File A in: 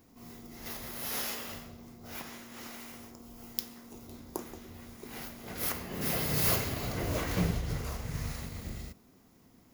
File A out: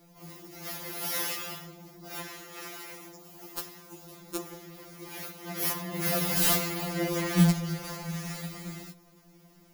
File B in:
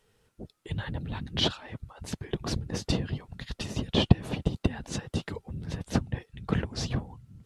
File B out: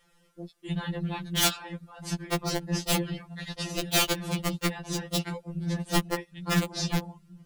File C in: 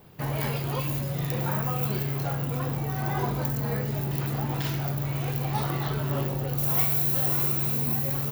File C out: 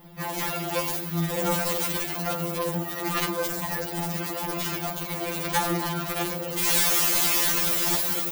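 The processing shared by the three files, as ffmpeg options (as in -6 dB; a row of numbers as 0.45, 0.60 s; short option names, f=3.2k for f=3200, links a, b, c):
-af "aeval=exprs='(mod(9.44*val(0)+1,2)-1)/9.44':c=same,afftfilt=real='re*2.83*eq(mod(b,8),0)':imag='im*2.83*eq(mod(b,8),0)':win_size=2048:overlap=0.75,volume=6dB"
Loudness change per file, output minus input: +4.5, +2.0, +2.0 LU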